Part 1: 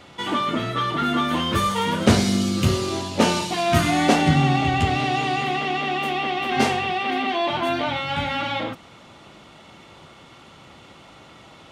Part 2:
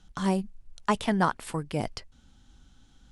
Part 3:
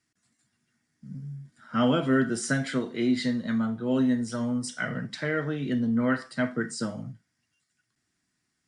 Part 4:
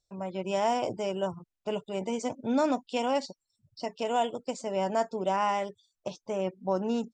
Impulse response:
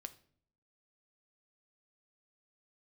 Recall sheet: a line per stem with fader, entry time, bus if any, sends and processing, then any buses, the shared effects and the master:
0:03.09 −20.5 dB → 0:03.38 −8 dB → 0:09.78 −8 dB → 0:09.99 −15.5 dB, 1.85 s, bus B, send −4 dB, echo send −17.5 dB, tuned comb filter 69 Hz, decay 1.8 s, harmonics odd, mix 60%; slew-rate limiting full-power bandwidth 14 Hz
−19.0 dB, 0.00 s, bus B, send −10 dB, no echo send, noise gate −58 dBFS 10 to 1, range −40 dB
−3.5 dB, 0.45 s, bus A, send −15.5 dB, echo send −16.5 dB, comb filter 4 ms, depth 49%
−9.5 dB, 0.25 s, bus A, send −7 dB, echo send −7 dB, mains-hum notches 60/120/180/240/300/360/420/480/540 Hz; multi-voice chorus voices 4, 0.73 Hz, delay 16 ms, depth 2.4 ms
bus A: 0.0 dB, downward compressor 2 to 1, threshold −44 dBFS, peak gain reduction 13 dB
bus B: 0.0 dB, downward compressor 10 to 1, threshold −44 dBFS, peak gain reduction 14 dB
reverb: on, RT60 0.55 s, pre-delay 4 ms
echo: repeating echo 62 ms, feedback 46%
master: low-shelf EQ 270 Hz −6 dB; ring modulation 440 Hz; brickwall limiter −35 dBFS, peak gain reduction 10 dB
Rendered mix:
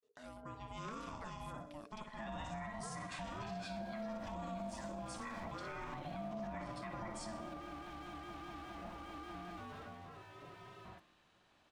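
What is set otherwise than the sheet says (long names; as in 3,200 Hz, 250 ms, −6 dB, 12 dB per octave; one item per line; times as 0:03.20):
stem 1: entry 1.85 s → 2.25 s
stem 4: missing multi-voice chorus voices 4, 0.73 Hz, delay 16 ms, depth 2.4 ms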